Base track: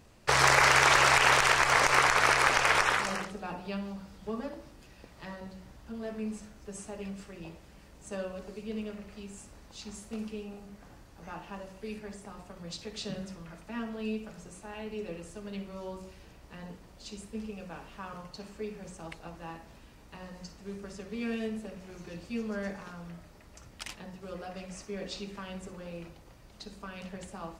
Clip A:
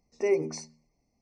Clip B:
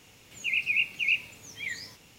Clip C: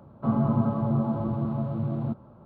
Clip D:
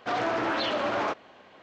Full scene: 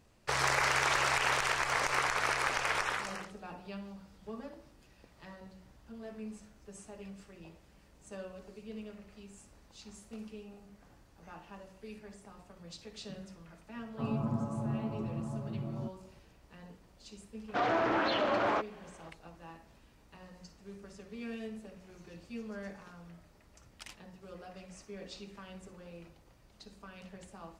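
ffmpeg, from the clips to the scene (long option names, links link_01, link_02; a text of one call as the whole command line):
ffmpeg -i bed.wav -i cue0.wav -i cue1.wav -i cue2.wav -i cue3.wav -filter_complex "[0:a]volume=-7.5dB[link_01];[4:a]highshelf=frequency=3800:gain=-8[link_02];[3:a]atrim=end=2.45,asetpts=PTS-STARTPTS,volume=-10dB,afade=type=in:duration=0.004:curve=hsin,afade=type=out:start_time=2.446:duration=0.004:curve=hsin,adelay=13750[link_03];[link_02]atrim=end=1.62,asetpts=PTS-STARTPTS,volume=-1.5dB,afade=type=in:duration=0.004:curve=hsin,afade=type=out:start_time=1.616:duration=0.004:curve=hsin,adelay=770868S[link_04];[link_01][link_03][link_04]amix=inputs=3:normalize=0" out.wav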